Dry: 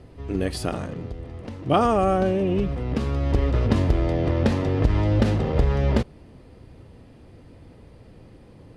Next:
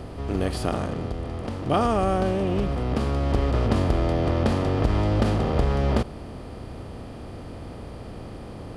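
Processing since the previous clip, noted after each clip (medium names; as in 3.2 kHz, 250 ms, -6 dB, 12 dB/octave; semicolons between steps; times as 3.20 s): spectral levelling over time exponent 0.6; trim -4.5 dB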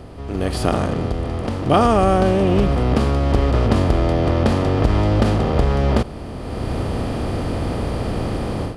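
level rider gain up to 16 dB; trim -1 dB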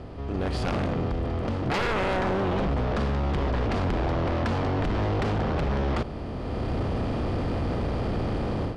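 wavefolder -15 dBFS; distance through air 99 m; saturation -19.5 dBFS, distortion -16 dB; trim -2 dB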